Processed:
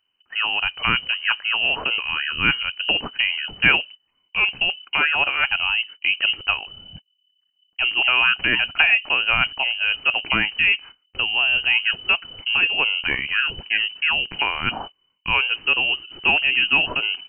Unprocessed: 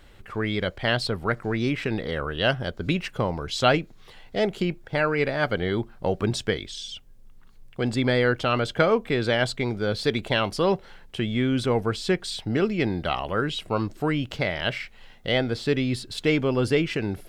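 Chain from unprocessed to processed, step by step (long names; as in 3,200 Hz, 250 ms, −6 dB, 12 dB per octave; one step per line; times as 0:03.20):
noise gate −39 dBFS, range −27 dB
voice inversion scrambler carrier 3,000 Hz
level +3.5 dB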